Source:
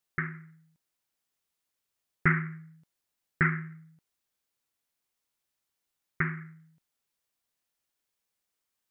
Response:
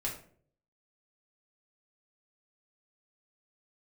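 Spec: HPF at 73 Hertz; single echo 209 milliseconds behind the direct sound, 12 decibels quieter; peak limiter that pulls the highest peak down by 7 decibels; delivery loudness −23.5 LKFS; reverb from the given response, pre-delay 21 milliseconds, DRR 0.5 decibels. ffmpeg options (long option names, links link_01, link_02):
-filter_complex "[0:a]highpass=73,alimiter=limit=-17.5dB:level=0:latency=1,aecho=1:1:209:0.251,asplit=2[link_01][link_02];[1:a]atrim=start_sample=2205,adelay=21[link_03];[link_02][link_03]afir=irnorm=-1:irlink=0,volume=-3dB[link_04];[link_01][link_04]amix=inputs=2:normalize=0,volume=9.5dB"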